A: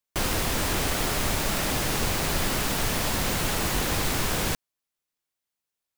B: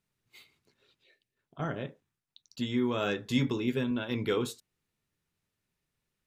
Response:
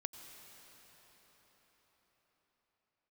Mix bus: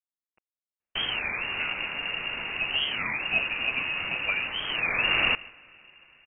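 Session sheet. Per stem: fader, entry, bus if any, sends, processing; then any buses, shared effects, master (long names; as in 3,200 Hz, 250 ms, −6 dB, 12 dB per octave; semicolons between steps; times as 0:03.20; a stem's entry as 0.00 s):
+2.5 dB, 0.80 s, send −16.5 dB, echo send −21.5 dB, automatic ducking −13 dB, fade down 1.70 s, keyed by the second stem
−3.5 dB, 0.00 s, no send, no echo send, bit reduction 7 bits; transient designer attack +7 dB, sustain +1 dB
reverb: on, RT60 5.6 s, pre-delay 82 ms
echo: single-tap delay 145 ms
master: voice inversion scrambler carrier 2,800 Hz; wow of a warped record 33 1/3 rpm, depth 250 cents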